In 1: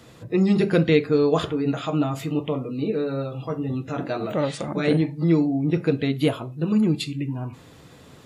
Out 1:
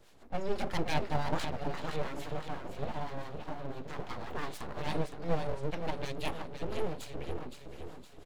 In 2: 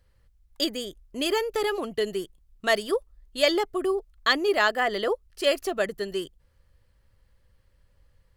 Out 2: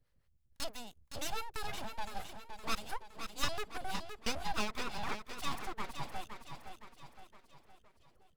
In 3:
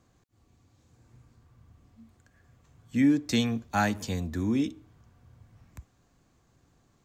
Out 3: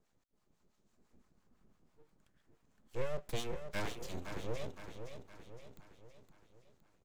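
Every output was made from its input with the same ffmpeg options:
-filter_complex "[0:a]acrossover=split=520[link_01][link_02];[link_01]aeval=exprs='val(0)*(1-0.7/2+0.7/2*cos(2*PI*6*n/s))':channel_layout=same[link_03];[link_02]aeval=exprs='val(0)*(1-0.7/2-0.7/2*cos(2*PI*6*n/s))':channel_layout=same[link_04];[link_03][link_04]amix=inputs=2:normalize=0,aecho=1:1:515|1030|1545|2060|2575|3090:0.398|0.195|0.0956|0.0468|0.023|0.0112,aeval=exprs='abs(val(0))':channel_layout=same,volume=-7dB"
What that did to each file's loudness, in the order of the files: −14.5, −14.5, −15.5 LU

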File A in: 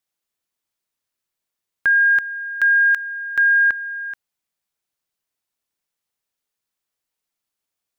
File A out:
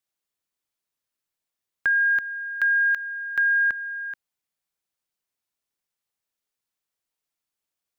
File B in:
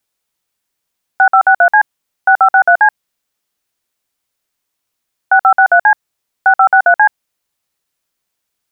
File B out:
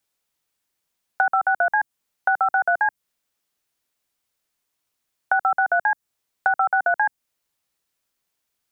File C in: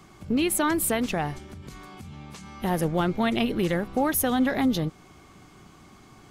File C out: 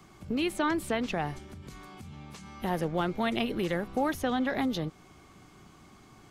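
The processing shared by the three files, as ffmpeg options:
-filter_complex "[0:a]acrossover=split=330|6100[link_01][link_02][link_03];[link_01]acompressor=threshold=-29dB:ratio=4[link_04];[link_02]acompressor=threshold=-15dB:ratio=4[link_05];[link_03]acompressor=threshold=-51dB:ratio=4[link_06];[link_04][link_05][link_06]amix=inputs=3:normalize=0,volume=-3.5dB"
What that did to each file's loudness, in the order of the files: −5.5, −11.0, −5.5 LU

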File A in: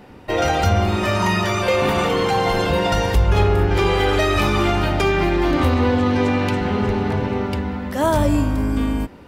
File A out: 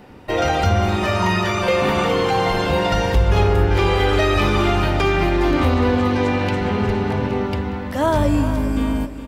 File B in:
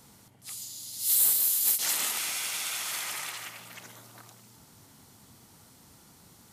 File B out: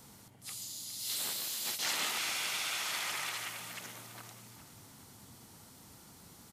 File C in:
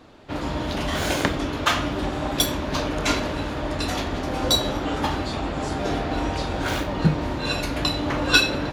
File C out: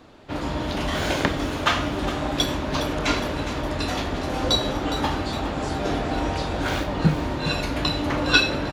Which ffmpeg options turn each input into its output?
-filter_complex "[0:a]aecho=1:1:411|822|1233|1644:0.224|0.0895|0.0358|0.0143,acrossover=split=5700[link_01][link_02];[link_02]acompressor=threshold=-42dB:ratio=4:attack=1:release=60[link_03];[link_01][link_03]amix=inputs=2:normalize=0"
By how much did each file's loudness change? 0.0, −9.0, 0.0 LU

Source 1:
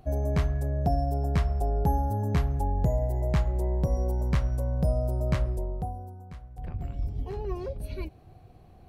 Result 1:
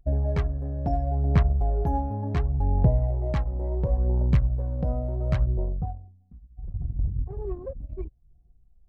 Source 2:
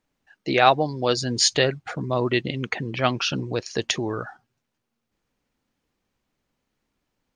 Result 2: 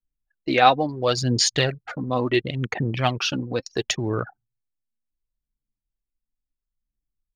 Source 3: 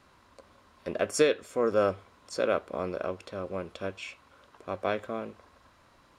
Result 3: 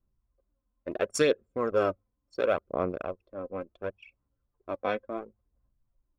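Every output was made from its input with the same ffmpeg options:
-af "anlmdn=15.8,adynamicequalizer=threshold=0.00891:dfrequency=120:dqfactor=2.3:tfrequency=120:tqfactor=2.3:attack=5:release=100:ratio=0.375:range=1.5:mode=boostabove:tftype=bell,aphaser=in_gain=1:out_gain=1:delay=4:decay=0.47:speed=0.71:type=sinusoidal,volume=-1dB"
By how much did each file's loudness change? +2.0, +0.5, −0.5 LU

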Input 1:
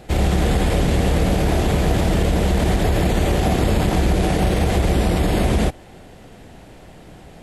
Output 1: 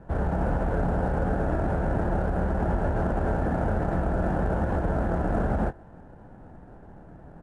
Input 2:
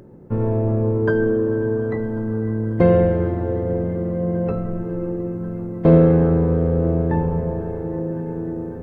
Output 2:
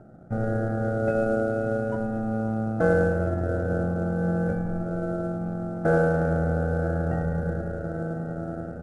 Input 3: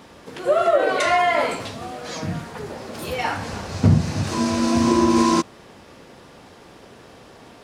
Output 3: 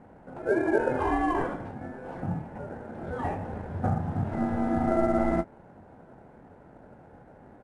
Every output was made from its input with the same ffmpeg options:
-filter_complex "[0:a]acrossover=split=350[link_01][link_02];[link_01]alimiter=limit=-16.5dB:level=0:latency=1:release=120[link_03];[link_02]aeval=exprs='val(0)*sin(2*PI*1000*n/s)':channel_layout=same[link_04];[link_03][link_04]amix=inputs=2:normalize=0,lowpass=frequency=850:width_type=q:width=4.3,asplit=2[link_05][link_06];[link_06]adelay=23,volume=-11dB[link_07];[link_05][link_07]amix=inputs=2:normalize=0,volume=-4dB" -ar 22050 -c:a adpcm_ima_wav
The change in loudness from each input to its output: −8.0, −6.0, −8.5 LU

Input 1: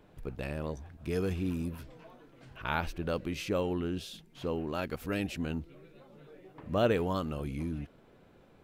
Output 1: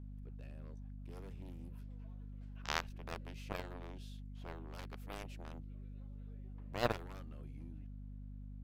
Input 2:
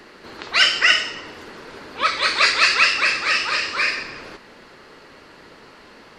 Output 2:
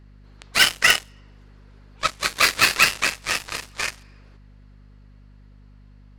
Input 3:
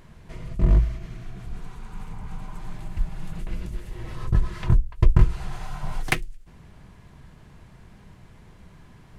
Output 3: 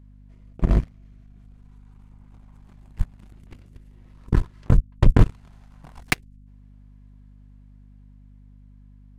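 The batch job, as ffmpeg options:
-af "dynaudnorm=framelen=110:gausssize=31:maxgain=5dB,aeval=exprs='0.891*(cos(1*acos(clip(val(0)/0.891,-1,1)))-cos(1*PI/2))+0.355*(cos(5*acos(clip(val(0)/0.891,-1,1)))-cos(5*PI/2))+0.398*(cos(7*acos(clip(val(0)/0.891,-1,1)))-cos(7*PI/2))':channel_layout=same,aeval=exprs='val(0)+0.00631*(sin(2*PI*50*n/s)+sin(2*PI*2*50*n/s)/2+sin(2*PI*3*50*n/s)/3+sin(2*PI*4*50*n/s)/4+sin(2*PI*5*50*n/s)/5)':channel_layout=same,volume=-3dB"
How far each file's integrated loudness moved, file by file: −12.0, −2.5, +3.0 LU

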